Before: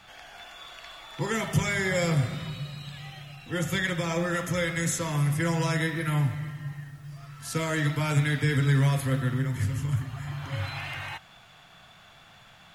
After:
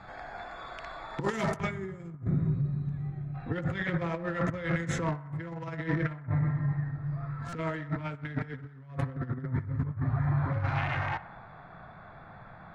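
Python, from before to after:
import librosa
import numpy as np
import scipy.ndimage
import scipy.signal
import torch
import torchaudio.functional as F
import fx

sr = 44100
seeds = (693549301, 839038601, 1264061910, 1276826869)

y = fx.wiener(x, sr, points=15)
y = fx.lowpass(y, sr, hz=fx.steps((0.0, 8100.0), (1.57, 2500.0)), slope=12)
y = fx.over_compress(y, sr, threshold_db=-33.0, ratio=-0.5)
y = fx.spec_box(y, sr, start_s=1.7, length_s=1.65, low_hz=450.0, high_hz=6000.0, gain_db=-14)
y = fx.echo_banded(y, sr, ms=63, feedback_pct=77, hz=1100.0, wet_db=-17)
y = fx.buffer_glitch(y, sr, at_s=(7.49,), block=256, repeats=5)
y = F.gain(torch.from_numpy(y), 2.5).numpy()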